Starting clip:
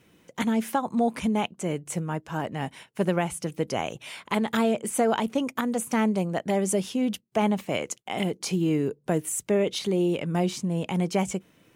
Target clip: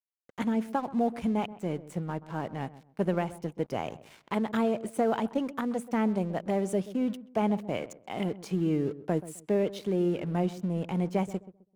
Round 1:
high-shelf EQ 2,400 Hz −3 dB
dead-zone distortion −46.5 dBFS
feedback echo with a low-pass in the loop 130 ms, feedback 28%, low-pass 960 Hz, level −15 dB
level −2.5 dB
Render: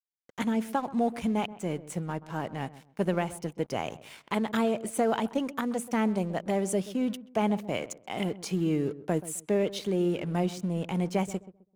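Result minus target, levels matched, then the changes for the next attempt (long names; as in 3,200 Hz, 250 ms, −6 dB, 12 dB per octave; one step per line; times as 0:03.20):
4,000 Hz band +5.0 dB
change: high-shelf EQ 2,400 Hz −11 dB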